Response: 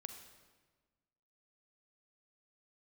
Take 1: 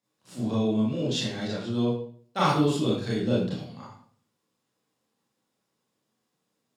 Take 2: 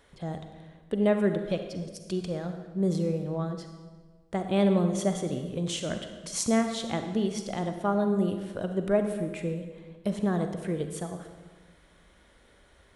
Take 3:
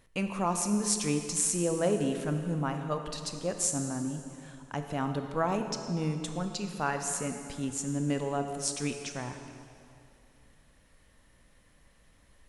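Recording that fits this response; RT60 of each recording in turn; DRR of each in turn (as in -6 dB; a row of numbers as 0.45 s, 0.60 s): 2; 0.55 s, 1.4 s, 2.5 s; -8.0 dB, 6.5 dB, 6.0 dB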